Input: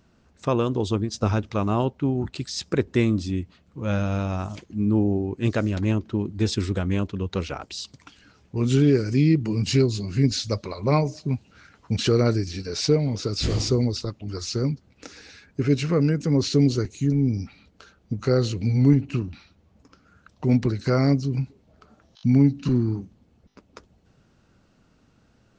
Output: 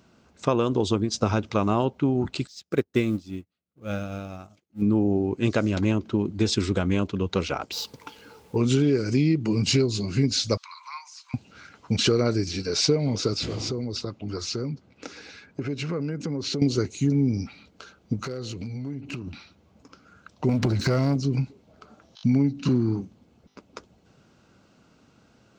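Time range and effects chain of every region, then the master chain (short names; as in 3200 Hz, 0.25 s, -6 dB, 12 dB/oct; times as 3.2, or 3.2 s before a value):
2.47–4.82 G.711 law mismatch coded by mu + notch 980 Hz, Q 5.8 + upward expander 2.5:1, over -43 dBFS
7.71–8.56 median filter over 5 samples + small resonant body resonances 470/870 Hz, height 17 dB, ringing for 60 ms + added noise pink -64 dBFS
10.57–11.34 steep high-pass 930 Hz 72 dB/oct + compressor 2:1, threshold -49 dBFS
13.33–16.62 HPF 63 Hz + high shelf 5300 Hz -9.5 dB + compressor, threshold -28 dBFS
18.23–19.27 compressor 12:1, threshold -31 dBFS + hard clip -28 dBFS
20.49–21.16 low shelf 150 Hz +8.5 dB + compressor 10:1, threshold -23 dBFS + sample leveller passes 2
whole clip: HPF 160 Hz 6 dB/oct; notch 1800 Hz, Q 11; compressor 5:1, threshold -22 dBFS; gain +4.5 dB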